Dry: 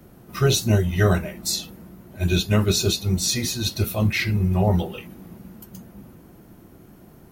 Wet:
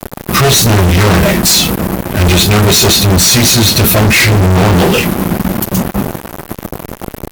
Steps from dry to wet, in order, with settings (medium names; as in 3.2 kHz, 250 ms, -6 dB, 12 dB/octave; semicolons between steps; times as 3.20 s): fuzz box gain 44 dB, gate -43 dBFS; trim +6.5 dB